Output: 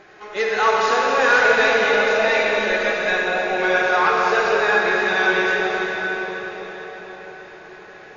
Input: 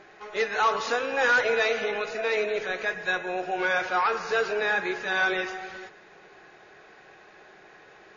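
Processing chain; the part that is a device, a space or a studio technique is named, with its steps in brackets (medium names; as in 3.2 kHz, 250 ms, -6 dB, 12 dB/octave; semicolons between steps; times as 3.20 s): 1.84–2.92 s: comb 3.4 ms, depth 84%; cathedral (reverberation RT60 5.7 s, pre-delay 40 ms, DRR -3 dB); trim +3.5 dB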